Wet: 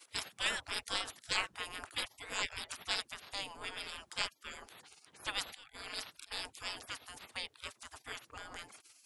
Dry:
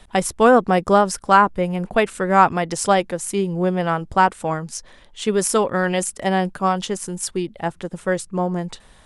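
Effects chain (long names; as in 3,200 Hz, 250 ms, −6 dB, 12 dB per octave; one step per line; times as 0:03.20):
0:05.32–0:06.32: volume swells 383 ms
gate on every frequency bin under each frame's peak −30 dB weak
level +3 dB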